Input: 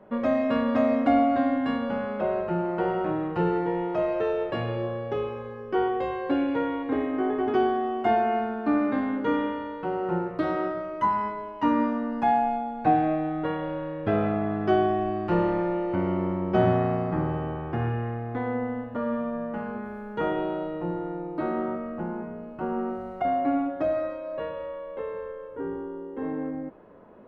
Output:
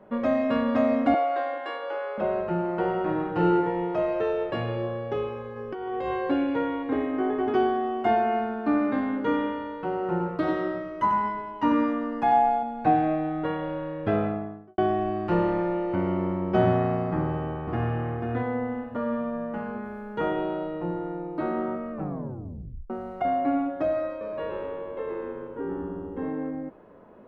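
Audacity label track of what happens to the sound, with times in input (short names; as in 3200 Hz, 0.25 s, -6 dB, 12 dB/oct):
1.140000	2.180000	Chebyshev high-pass 310 Hz, order 8
2.990000	3.550000	reverb throw, RT60 0.92 s, DRR 2.5 dB
5.560000	6.300000	negative-ratio compressor -30 dBFS
10.110000	12.630000	echo 92 ms -7 dB
14.080000	14.780000	studio fade out
17.180000	17.930000	echo throw 0.49 s, feedback 15%, level -4.5 dB
20.410000	20.820000	careless resampling rate divided by 4×, down none, up filtered
21.920000	21.920000	tape stop 0.98 s
24.090000	26.290000	frequency-shifting echo 0.117 s, feedback 43%, per repeat -100 Hz, level -5.5 dB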